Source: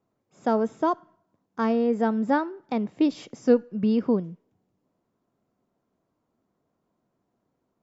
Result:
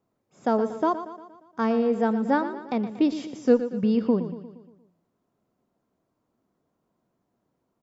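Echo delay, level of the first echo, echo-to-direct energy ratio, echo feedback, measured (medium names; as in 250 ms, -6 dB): 117 ms, -12.0 dB, -10.5 dB, 53%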